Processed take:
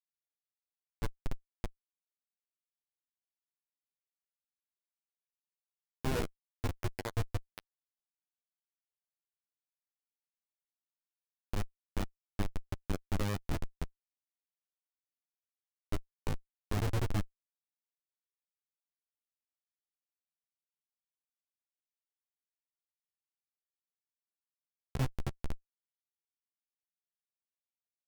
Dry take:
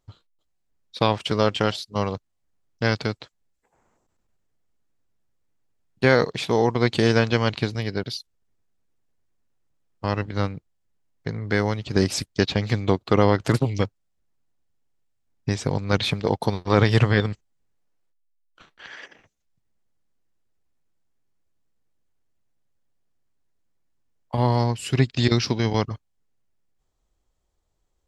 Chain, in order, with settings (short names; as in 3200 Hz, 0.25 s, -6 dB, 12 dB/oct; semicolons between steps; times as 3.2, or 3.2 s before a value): LFO notch square 0.52 Hz 690–2900 Hz; notches 50/100/150/200/250/300/350/400/450 Hz; Schmitt trigger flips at -15.5 dBFS; flange 0.1 Hz, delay 5.1 ms, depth 9.5 ms, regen +6%; gain +1 dB